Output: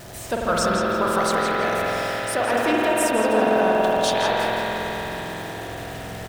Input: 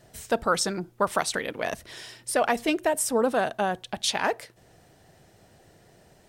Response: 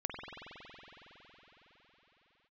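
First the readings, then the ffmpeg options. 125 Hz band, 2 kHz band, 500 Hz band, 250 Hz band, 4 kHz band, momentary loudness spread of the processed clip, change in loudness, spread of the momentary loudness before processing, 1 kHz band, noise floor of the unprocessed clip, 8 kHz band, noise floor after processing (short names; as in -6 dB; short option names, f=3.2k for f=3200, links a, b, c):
+9.0 dB, +6.5 dB, +7.0 dB, +6.5 dB, +3.5 dB, 12 LU, +5.0 dB, 9 LU, +7.0 dB, -58 dBFS, +0.5 dB, -34 dBFS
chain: -filter_complex "[0:a]aeval=exprs='val(0)+0.5*0.02*sgn(val(0))':c=same,asplit=2[a][b];[b]adelay=166,lowpass=f=4.3k:p=1,volume=-3dB,asplit=2[c][d];[d]adelay=166,lowpass=f=4.3k:p=1,volume=0.54,asplit=2[e][f];[f]adelay=166,lowpass=f=4.3k:p=1,volume=0.54,asplit=2[g][h];[h]adelay=166,lowpass=f=4.3k:p=1,volume=0.54,asplit=2[i][j];[j]adelay=166,lowpass=f=4.3k:p=1,volume=0.54,asplit=2[k][l];[l]adelay=166,lowpass=f=4.3k:p=1,volume=0.54,asplit=2[m][n];[n]adelay=166,lowpass=f=4.3k:p=1,volume=0.54[o];[a][c][e][g][i][k][m][o]amix=inputs=8:normalize=0[p];[1:a]atrim=start_sample=2205[q];[p][q]afir=irnorm=-1:irlink=0"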